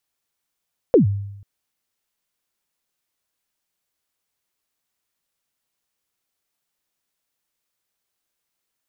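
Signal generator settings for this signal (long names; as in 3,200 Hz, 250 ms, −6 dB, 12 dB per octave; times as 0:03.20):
synth kick length 0.49 s, from 550 Hz, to 100 Hz, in 119 ms, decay 0.86 s, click off, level −7 dB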